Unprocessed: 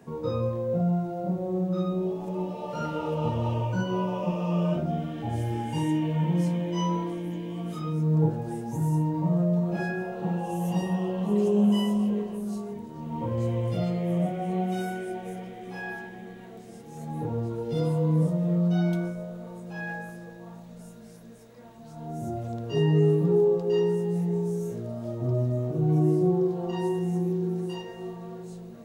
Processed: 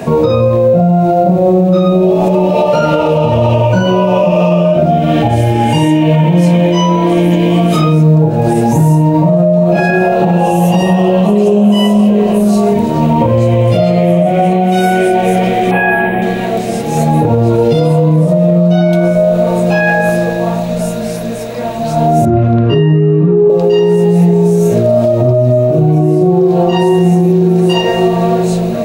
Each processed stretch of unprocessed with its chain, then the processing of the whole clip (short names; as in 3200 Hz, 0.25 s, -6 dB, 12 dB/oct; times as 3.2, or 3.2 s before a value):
15.71–16.22 Butterworth band-stop 5500 Hz, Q 0.79 + bell 6200 Hz -11.5 dB 0.32 oct
22.25–23.5 LPF 1900 Hz + band shelf 640 Hz -10 dB 1.1 oct
whole clip: thirty-one-band EQ 630 Hz +11 dB, 2500 Hz +7 dB, 4000 Hz +4 dB; compressor 6:1, threshold -32 dBFS; maximiser +28.5 dB; gain -1 dB